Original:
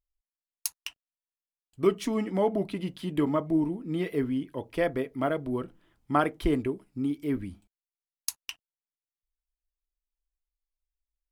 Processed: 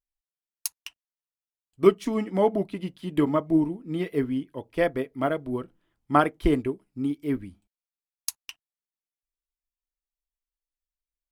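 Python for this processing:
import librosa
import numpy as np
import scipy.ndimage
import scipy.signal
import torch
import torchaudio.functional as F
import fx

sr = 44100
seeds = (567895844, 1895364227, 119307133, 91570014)

y = fx.upward_expand(x, sr, threshold_db=-45.0, expansion=1.5)
y = y * librosa.db_to_amplitude(6.5)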